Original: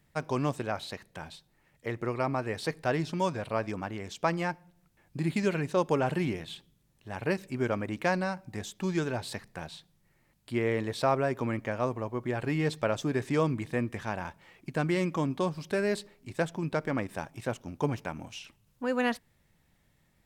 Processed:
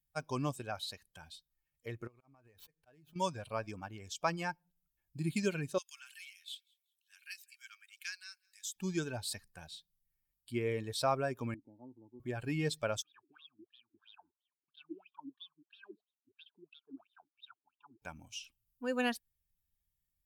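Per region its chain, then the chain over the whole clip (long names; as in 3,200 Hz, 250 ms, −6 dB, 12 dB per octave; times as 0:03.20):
0:02.07–0:03.16: running median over 9 samples + volume swells 403 ms + downward compressor 12 to 1, threshold −44 dBFS
0:05.78–0:08.76: Bessel high-pass filter 2,400 Hz, order 6 + repeating echo 190 ms, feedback 41%, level −19.5 dB
0:11.54–0:12.20: formant resonators in series u + multiband upward and downward compressor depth 40%
0:13.02–0:18.02: leveller curve on the samples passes 2 + LFO wah 3 Hz 290–3,700 Hz, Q 14 + phaser with its sweep stopped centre 2,000 Hz, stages 6
whole clip: spectral dynamics exaggerated over time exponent 1.5; high-shelf EQ 3,000 Hz +10.5 dB; notch filter 2,000 Hz, Q 7; level −4 dB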